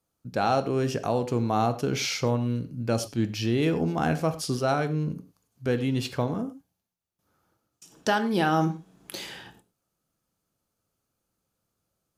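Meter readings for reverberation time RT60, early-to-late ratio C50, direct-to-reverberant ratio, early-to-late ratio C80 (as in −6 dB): non-exponential decay, 13.5 dB, 9.5 dB, 16.5 dB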